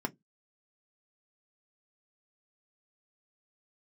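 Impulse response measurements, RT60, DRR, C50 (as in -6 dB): 0.15 s, 3.5 dB, 28.5 dB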